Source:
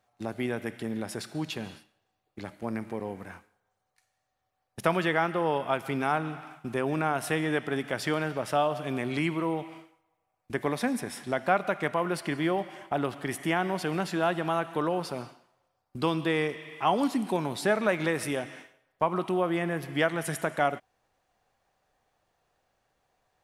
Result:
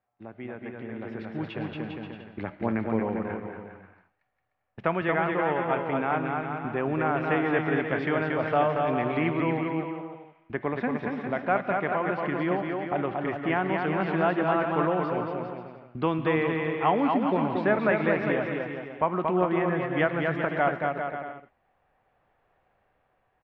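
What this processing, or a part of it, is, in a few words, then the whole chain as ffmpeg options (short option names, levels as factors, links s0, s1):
action camera in a waterproof case: -af "lowpass=f=2600:w=0.5412,lowpass=f=2600:w=1.3066,aecho=1:1:230|402.5|531.9|628.9|701.7:0.631|0.398|0.251|0.158|0.1,dynaudnorm=f=360:g=9:m=5.96,volume=0.376" -ar 44100 -c:a aac -b:a 96k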